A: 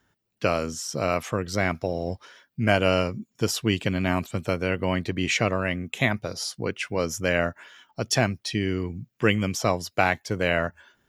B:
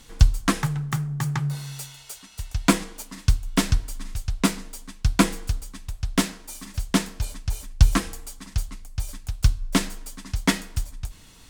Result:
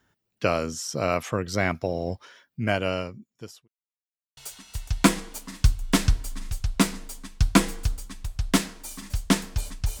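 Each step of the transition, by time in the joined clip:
A
2.18–3.68 s: fade out linear
3.68–4.37 s: mute
4.37 s: go over to B from 2.01 s

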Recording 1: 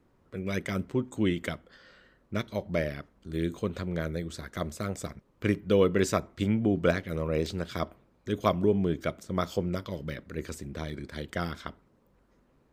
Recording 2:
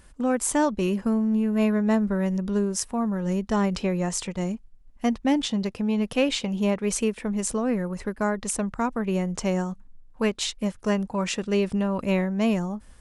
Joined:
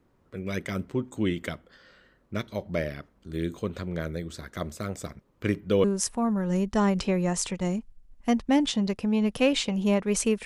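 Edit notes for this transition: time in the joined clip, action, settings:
recording 1
5.84 s: go over to recording 2 from 2.60 s

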